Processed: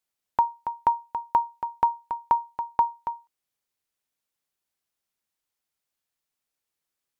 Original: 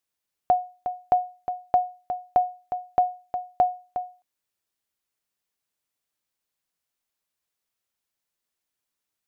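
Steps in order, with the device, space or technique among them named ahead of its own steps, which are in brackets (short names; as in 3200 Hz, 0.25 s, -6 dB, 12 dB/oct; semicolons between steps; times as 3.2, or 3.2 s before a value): nightcore (varispeed +29%)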